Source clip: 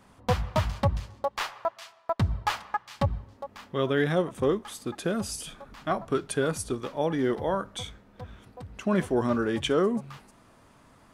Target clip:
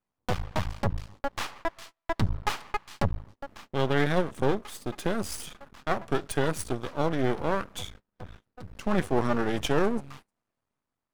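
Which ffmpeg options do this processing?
ffmpeg -i in.wav -af "agate=range=-27dB:threshold=-46dB:ratio=16:detection=peak,dynaudnorm=framelen=760:gausssize=3:maxgain=3dB,aeval=exprs='max(val(0),0)':channel_layout=same" out.wav

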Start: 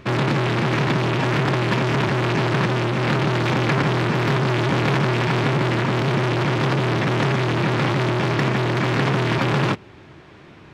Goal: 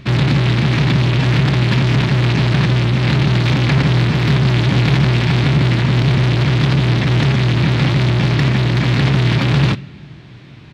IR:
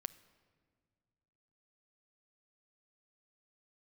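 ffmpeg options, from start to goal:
-filter_complex "[0:a]asplit=2[link_01][link_02];[link_02]asetrate=22050,aresample=44100,atempo=2,volume=-8dB[link_03];[link_01][link_03]amix=inputs=2:normalize=0,asplit=2[link_04][link_05];[link_05]equalizer=frequency=125:width_type=o:width=1:gain=10,equalizer=frequency=250:width_type=o:width=1:gain=6,equalizer=frequency=500:width_type=o:width=1:gain=-7,equalizer=frequency=1000:width_type=o:width=1:gain=-9,equalizer=frequency=2000:width_type=o:width=1:gain=4,equalizer=frequency=4000:width_type=o:width=1:gain=10[link_06];[1:a]atrim=start_sample=2205[link_07];[link_06][link_07]afir=irnorm=-1:irlink=0,volume=4dB[link_08];[link_04][link_08]amix=inputs=2:normalize=0,volume=-5.5dB"

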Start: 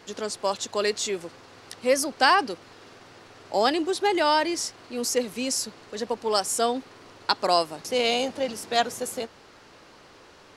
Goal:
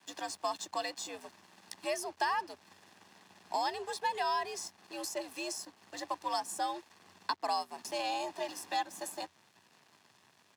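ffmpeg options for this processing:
ffmpeg -i in.wav -filter_complex "[0:a]aecho=1:1:1.2:0.76,acrossover=split=320|1100[link_01][link_02][link_03];[link_01]acompressor=threshold=-46dB:ratio=4[link_04];[link_02]acompressor=threshold=-28dB:ratio=4[link_05];[link_03]acompressor=threshold=-34dB:ratio=4[link_06];[link_04][link_05][link_06]amix=inputs=3:normalize=0,aeval=exprs='sgn(val(0))*max(abs(val(0))-0.00376,0)':channel_layout=same,afreqshift=85,volume=-5dB" out.wav

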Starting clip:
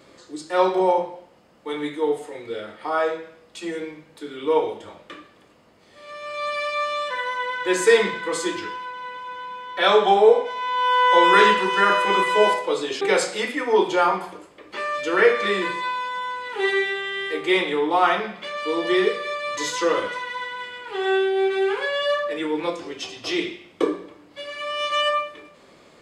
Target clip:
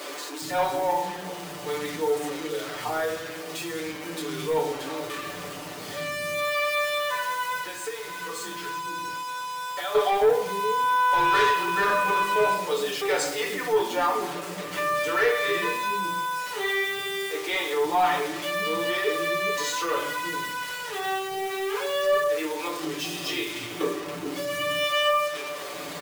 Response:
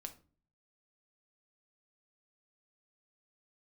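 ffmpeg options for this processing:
-filter_complex "[0:a]aeval=exprs='val(0)+0.5*0.0299*sgn(val(0))':channel_layout=same,asettb=1/sr,asplit=3[link_01][link_02][link_03];[link_01]atrim=end=7.584[link_04];[link_02]atrim=start=7.58:end=9.95,asetpts=PTS-STARTPTS,afade=type=in:duration=0.004:curve=qsin,afade=type=out:start_time=2.366:duration=0.004:curve=qsin,acompressor=threshold=-27dB:ratio=6[link_05];[link_03]atrim=start=9.946[link_06];[link_04][link_05]acrossfade=duration=0.004:curve1=hsin:curve2=qsin[link_07];[link_07][link_06]acrossfade=duration=0.004:curve1=qsin:curve2=hsin,acrusher=bits=5:mix=0:aa=0.000001,highpass=67,acrossover=split=310[link_08][link_09];[link_08]adelay=420[link_10];[link_10][link_09]amix=inputs=2:normalize=0[link_11];[1:a]atrim=start_sample=2205,asetrate=48510,aresample=44100[link_12];[link_11][link_12]afir=irnorm=-1:irlink=0,asoftclip=type=tanh:threshold=-17.5dB,aecho=1:1:6.8:0.8"

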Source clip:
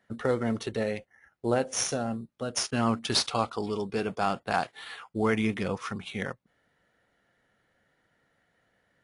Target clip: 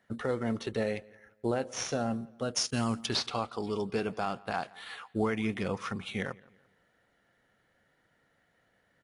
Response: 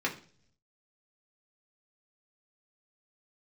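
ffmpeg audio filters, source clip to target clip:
-filter_complex "[0:a]acrossover=split=6200[link_01][link_02];[link_02]acompressor=threshold=-52dB:ratio=4:attack=1:release=60[link_03];[link_01][link_03]amix=inputs=2:normalize=0,asplit=3[link_04][link_05][link_06];[link_04]afade=type=out:start_time=2.56:duration=0.02[link_07];[link_05]bass=frequency=250:gain=5,treble=frequency=4000:gain=15,afade=type=in:start_time=2.56:duration=0.02,afade=type=out:start_time=3.05:duration=0.02[link_08];[link_06]afade=type=in:start_time=3.05:duration=0.02[link_09];[link_07][link_08][link_09]amix=inputs=3:normalize=0,alimiter=limit=-18.5dB:level=0:latency=1:release=491,asplit=2[link_10][link_11];[link_11]adelay=171,lowpass=frequency=3800:poles=1,volume=-23dB,asplit=2[link_12][link_13];[link_13]adelay=171,lowpass=frequency=3800:poles=1,volume=0.39,asplit=2[link_14][link_15];[link_15]adelay=171,lowpass=frequency=3800:poles=1,volume=0.39[link_16];[link_10][link_12][link_14][link_16]amix=inputs=4:normalize=0"

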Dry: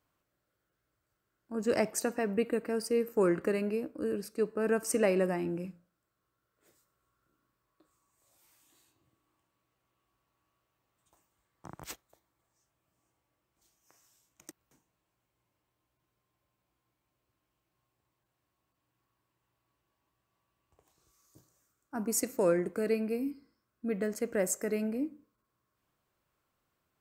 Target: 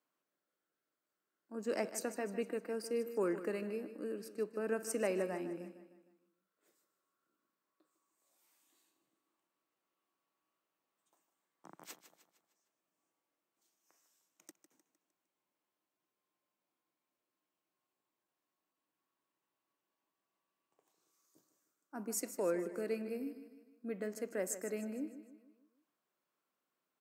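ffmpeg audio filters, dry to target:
ffmpeg -i in.wav -filter_complex "[0:a]highpass=frequency=200:width=0.5412,highpass=frequency=200:width=1.3066,asplit=2[link_01][link_02];[link_02]aecho=0:1:153|306|459|612|765:0.237|0.111|0.0524|0.0246|0.0116[link_03];[link_01][link_03]amix=inputs=2:normalize=0,volume=-7.5dB" out.wav

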